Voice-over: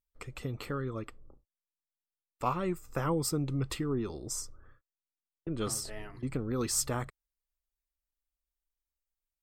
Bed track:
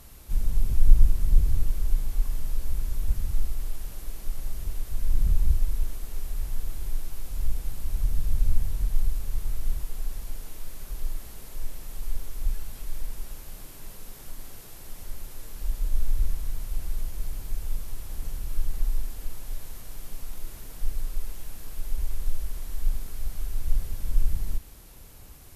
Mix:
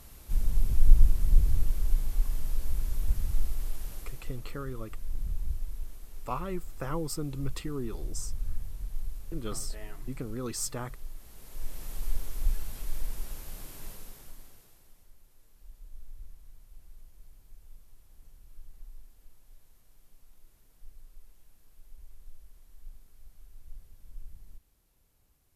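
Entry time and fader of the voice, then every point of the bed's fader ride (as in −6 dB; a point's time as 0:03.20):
3.85 s, −3.5 dB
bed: 0:03.95 −2 dB
0:04.48 −11 dB
0:11.15 −11 dB
0:11.83 −0.5 dB
0:13.88 −0.5 dB
0:15.13 −21.5 dB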